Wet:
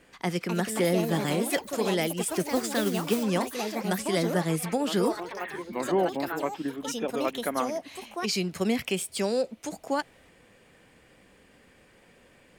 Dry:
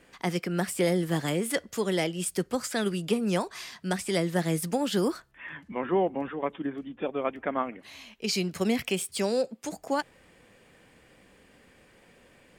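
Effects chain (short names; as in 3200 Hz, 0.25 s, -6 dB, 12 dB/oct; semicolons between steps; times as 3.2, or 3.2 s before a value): 2.55–3.23 modulation noise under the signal 13 dB; echoes that change speed 0.304 s, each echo +4 st, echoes 3, each echo -6 dB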